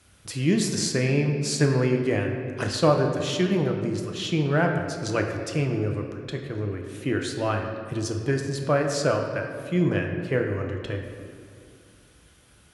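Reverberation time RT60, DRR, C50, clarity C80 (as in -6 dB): 2.3 s, 2.5 dB, 5.0 dB, 6.0 dB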